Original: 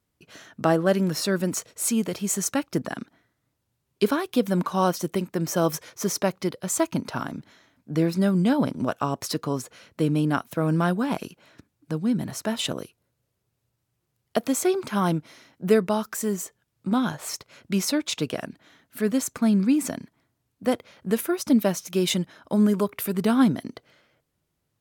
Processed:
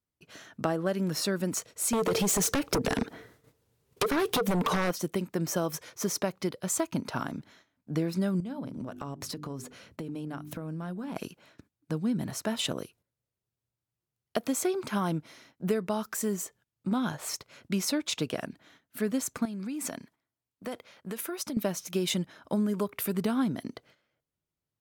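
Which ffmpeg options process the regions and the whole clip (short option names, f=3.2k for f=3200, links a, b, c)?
-filter_complex "[0:a]asettb=1/sr,asplit=3[a][b][c];[a]atrim=end=1.934[d];[b]atrim=start=1.93:end=4.91,asetpts=PTS-STARTPTS,afade=t=in:d=0.004:c=qsin,afade=t=out:st=2.976:d=0.004:c=qsin,equalizer=f=450:w=5.2:g=15,acompressor=threshold=-27dB:ratio=8:attack=3.2:release=140:knee=1:detection=peak,aeval=exprs='0.168*sin(PI/2*4.47*val(0)/0.168)':c=same[e];[c]atrim=start=4.906[f];[d][e]acrossfade=d=0.004:c1=hsin:c2=qsin[g];[g][f]acrossfade=d=0.004:c1=qsin:c2=hsin,asettb=1/sr,asplit=3[h][i][j];[h]atrim=end=8.404[k];[i]atrim=start=8.4:end=11.16,asetpts=PTS-STARTPTS,afade=t=in:d=0.004:c=qsin,afade=t=out:st=2.756:d=0.004:c=qsin,lowshelf=f=370:g=7.5,bandreject=f=50:t=h:w=6,bandreject=f=100:t=h:w=6,bandreject=f=150:t=h:w=6,bandreject=f=200:t=h:w=6,bandreject=f=250:t=h:w=6,bandreject=f=300:t=h:w=6,bandreject=f=350:t=h:w=6,bandreject=f=400:t=h:w=6,acompressor=threshold=-31dB:ratio=10:attack=3.2:release=140:knee=1:detection=peak[l];[j]atrim=start=11.156[m];[k][l]acrossfade=d=0.004:c1=hsin:c2=qsin[n];[n][m]acrossfade=d=0.004:c1=qsin:c2=hsin,asettb=1/sr,asplit=3[o][p][q];[o]atrim=end=19.454[r];[p]atrim=start=19.45:end=21.57,asetpts=PTS-STARTPTS,afade=t=in:d=0.004:c=qsin,afade=t=out:st=2.116:d=0.004:c=qsin,acompressor=threshold=-25dB:ratio=12:attack=3.2:release=140:knee=1:detection=peak,lowshelf=f=330:g=-7.5[s];[q]atrim=start=21.566[t];[r][s]acrossfade=d=0.004:c1=hsin:c2=qsin[u];[u][t]acrossfade=d=0.004:c1=qsin:c2=hsin,agate=range=-11dB:threshold=-55dB:ratio=16:detection=peak,acompressor=threshold=-22dB:ratio=6,volume=-2.5dB"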